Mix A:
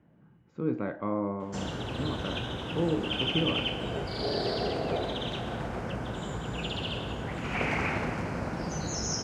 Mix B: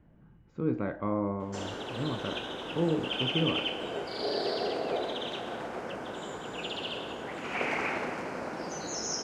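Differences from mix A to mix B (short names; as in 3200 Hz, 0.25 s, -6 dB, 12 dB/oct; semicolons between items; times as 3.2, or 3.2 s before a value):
background: add Chebyshev high-pass 350 Hz, order 2; master: remove HPF 110 Hz 12 dB/oct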